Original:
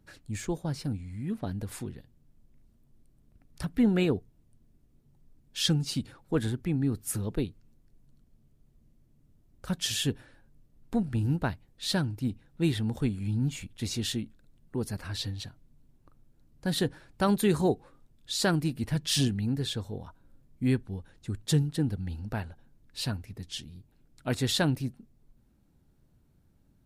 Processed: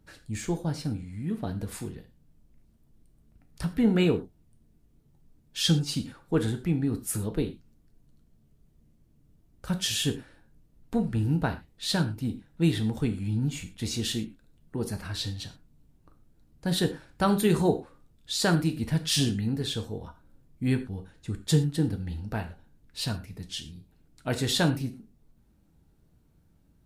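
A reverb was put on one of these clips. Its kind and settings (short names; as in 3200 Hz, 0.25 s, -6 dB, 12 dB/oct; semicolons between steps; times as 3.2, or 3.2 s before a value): non-linear reverb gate 0.14 s falling, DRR 6 dB; gain +1 dB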